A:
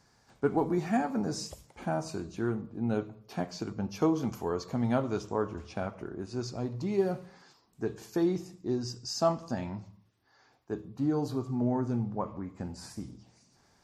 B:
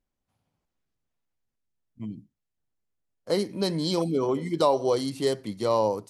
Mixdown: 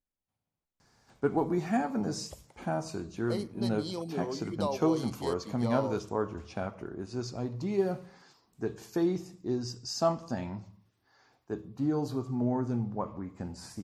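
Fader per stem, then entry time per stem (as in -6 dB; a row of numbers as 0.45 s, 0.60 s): -0.5 dB, -11.0 dB; 0.80 s, 0.00 s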